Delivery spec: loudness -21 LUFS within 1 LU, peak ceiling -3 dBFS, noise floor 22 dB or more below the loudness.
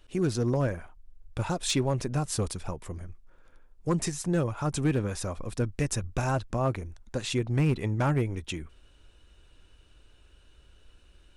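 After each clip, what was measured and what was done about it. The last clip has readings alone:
clipped 0.5%; flat tops at -18.5 dBFS; loudness -30.0 LUFS; peak -18.5 dBFS; loudness target -21.0 LUFS
-> clip repair -18.5 dBFS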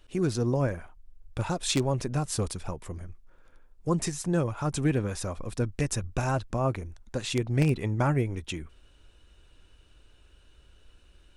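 clipped 0.0%; loudness -29.5 LUFS; peak -9.5 dBFS; loudness target -21.0 LUFS
-> gain +8.5 dB; limiter -3 dBFS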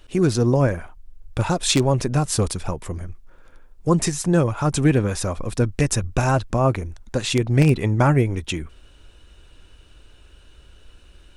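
loudness -21.0 LUFS; peak -3.0 dBFS; noise floor -50 dBFS

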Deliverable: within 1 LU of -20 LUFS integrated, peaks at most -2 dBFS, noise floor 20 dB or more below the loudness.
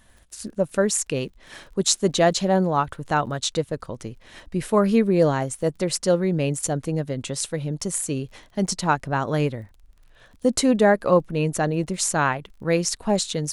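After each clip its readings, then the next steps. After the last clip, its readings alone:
ticks 27/s; loudness -23.0 LUFS; peak -2.5 dBFS; loudness target -20.0 LUFS
-> de-click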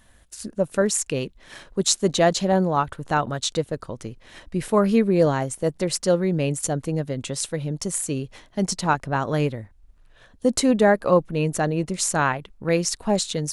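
ticks 0/s; loudness -23.0 LUFS; peak -2.5 dBFS; loudness target -20.0 LUFS
-> gain +3 dB; limiter -2 dBFS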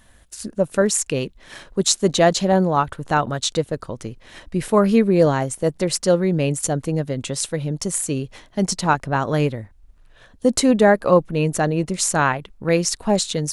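loudness -20.0 LUFS; peak -2.0 dBFS; noise floor -52 dBFS

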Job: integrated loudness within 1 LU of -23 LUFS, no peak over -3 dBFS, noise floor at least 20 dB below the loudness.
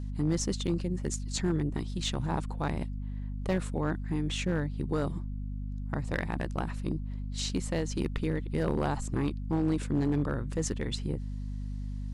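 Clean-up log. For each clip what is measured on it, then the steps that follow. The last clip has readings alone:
clipped 0.6%; flat tops at -21.0 dBFS; hum 50 Hz; harmonics up to 250 Hz; hum level -33 dBFS; loudness -32.5 LUFS; peak -21.0 dBFS; loudness target -23.0 LUFS
-> clip repair -21 dBFS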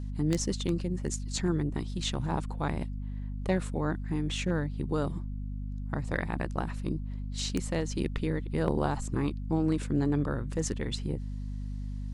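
clipped 0.0%; hum 50 Hz; harmonics up to 250 Hz; hum level -33 dBFS
-> de-hum 50 Hz, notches 5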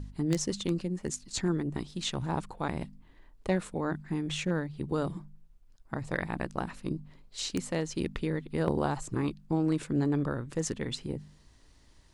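hum none; loudness -33.0 LUFS; peak -11.5 dBFS; loudness target -23.0 LUFS
-> gain +10 dB; limiter -3 dBFS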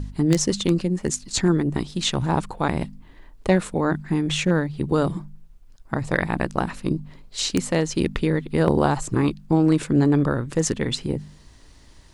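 loudness -23.0 LUFS; peak -3.0 dBFS; noise floor -49 dBFS

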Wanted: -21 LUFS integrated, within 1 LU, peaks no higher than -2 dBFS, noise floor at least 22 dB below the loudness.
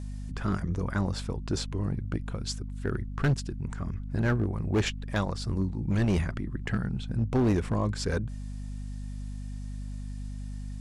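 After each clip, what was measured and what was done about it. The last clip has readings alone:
clipped 1.6%; flat tops at -20.0 dBFS; hum 50 Hz; harmonics up to 250 Hz; hum level -34 dBFS; loudness -31.5 LUFS; peak -20.0 dBFS; loudness target -21.0 LUFS
-> clip repair -20 dBFS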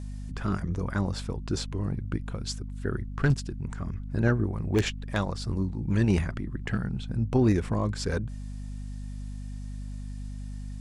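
clipped 0.0%; hum 50 Hz; harmonics up to 250 Hz; hum level -34 dBFS
-> notches 50/100/150/200/250 Hz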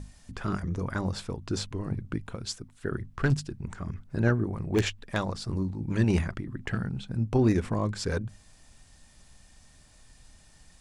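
hum none; loudness -30.5 LUFS; peak -10.0 dBFS; loudness target -21.0 LUFS
-> gain +9.5 dB; limiter -2 dBFS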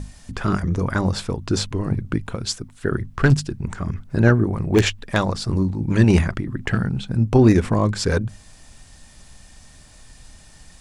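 loudness -21.0 LUFS; peak -2.0 dBFS; noise floor -48 dBFS

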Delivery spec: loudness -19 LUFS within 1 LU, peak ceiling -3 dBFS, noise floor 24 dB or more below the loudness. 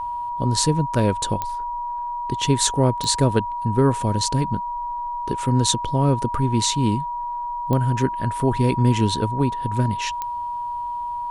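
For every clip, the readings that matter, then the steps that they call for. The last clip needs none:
clicks 4; steady tone 960 Hz; tone level -25 dBFS; loudness -22.0 LUFS; peak -3.0 dBFS; loudness target -19.0 LUFS
-> de-click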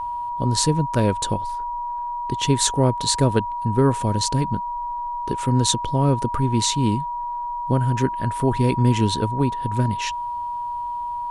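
clicks 0; steady tone 960 Hz; tone level -25 dBFS
-> notch 960 Hz, Q 30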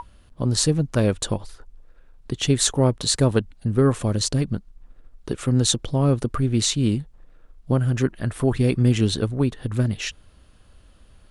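steady tone none; loudness -22.0 LUFS; peak -3.0 dBFS; loudness target -19.0 LUFS
-> gain +3 dB; limiter -3 dBFS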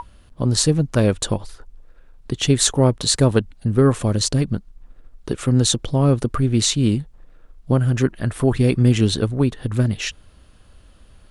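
loudness -19.5 LUFS; peak -3.0 dBFS; noise floor -50 dBFS

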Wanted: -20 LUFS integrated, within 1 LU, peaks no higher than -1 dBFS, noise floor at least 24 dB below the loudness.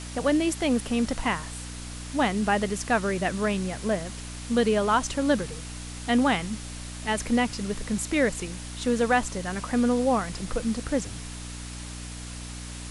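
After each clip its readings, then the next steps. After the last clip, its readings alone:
hum 60 Hz; harmonics up to 300 Hz; hum level -37 dBFS; noise floor -38 dBFS; noise floor target -51 dBFS; loudness -26.5 LUFS; peak -10.0 dBFS; loudness target -20.0 LUFS
-> de-hum 60 Hz, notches 5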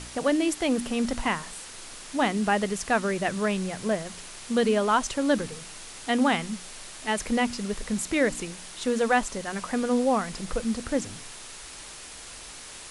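hum none; noise floor -43 dBFS; noise floor target -51 dBFS
-> noise print and reduce 8 dB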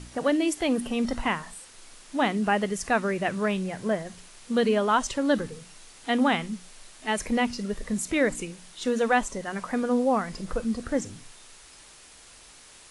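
noise floor -51 dBFS; loudness -27.0 LUFS; peak -9.5 dBFS; loudness target -20.0 LUFS
-> gain +7 dB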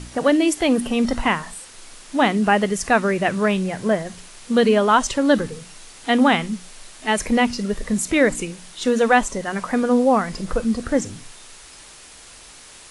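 loudness -20.0 LUFS; peak -2.5 dBFS; noise floor -44 dBFS

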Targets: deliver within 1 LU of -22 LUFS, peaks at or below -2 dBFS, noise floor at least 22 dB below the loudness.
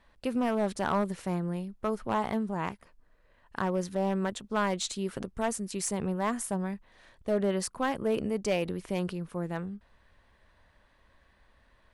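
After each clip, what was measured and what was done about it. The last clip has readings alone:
clipped 0.6%; flat tops at -20.5 dBFS; loudness -31.5 LUFS; peak -20.5 dBFS; loudness target -22.0 LUFS
-> clip repair -20.5 dBFS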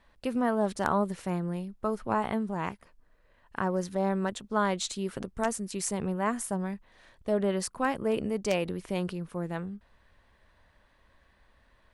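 clipped 0.0%; loudness -31.0 LUFS; peak -11.5 dBFS; loudness target -22.0 LUFS
-> gain +9 dB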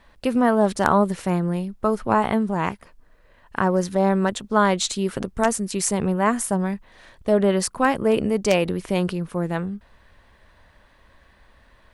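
loudness -22.0 LUFS; peak -2.5 dBFS; noise floor -56 dBFS

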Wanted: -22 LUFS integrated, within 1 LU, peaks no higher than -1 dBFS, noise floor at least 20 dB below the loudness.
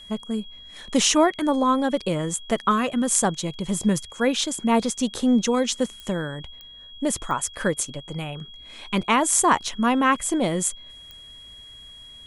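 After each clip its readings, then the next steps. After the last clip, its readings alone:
clicks 4; steady tone 3300 Hz; tone level -42 dBFS; loudness -23.0 LUFS; peak -3.0 dBFS; loudness target -22.0 LUFS
-> de-click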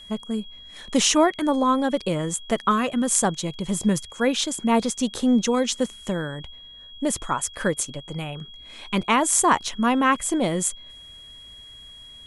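clicks 0; steady tone 3300 Hz; tone level -42 dBFS
-> notch 3300 Hz, Q 30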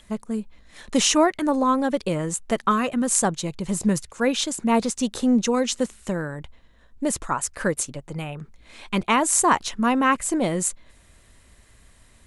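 steady tone none; loudness -23.0 LUFS; peak -3.0 dBFS; loudness target -22.0 LUFS
-> gain +1 dB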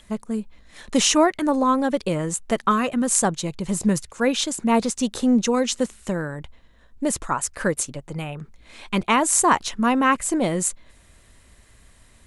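loudness -22.0 LUFS; peak -2.0 dBFS; noise floor -53 dBFS

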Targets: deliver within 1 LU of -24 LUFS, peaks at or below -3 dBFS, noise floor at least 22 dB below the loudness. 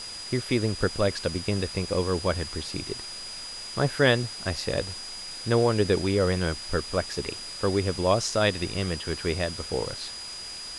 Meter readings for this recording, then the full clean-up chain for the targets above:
steady tone 4900 Hz; tone level -37 dBFS; noise floor -38 dBFS; noise floor target -50 dBFS; loudness -27.5 LUFS; peak -7.5 dBFS; loudness target -24.0 LUFS
-> notch 4900 Hz, Q 30; denoiser 12 dB, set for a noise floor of -38 dBFS; gain +3.5 dB

